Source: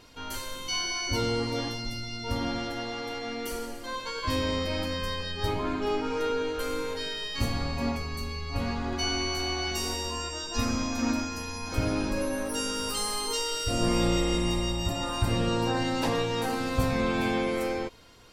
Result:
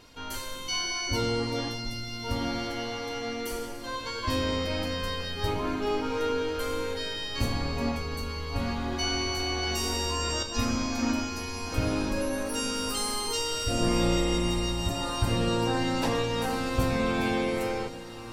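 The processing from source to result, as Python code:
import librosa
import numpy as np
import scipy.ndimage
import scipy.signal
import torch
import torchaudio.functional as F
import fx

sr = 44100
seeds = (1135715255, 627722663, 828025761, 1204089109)

p1 = x + fx.echo_diffused(x, sr, ms=1979, feedback_pct=45, wet_db=-14, dry=0)
y = fx.env_flatten(p1, sr, amount_pct=100, at=(9.63, 10.43))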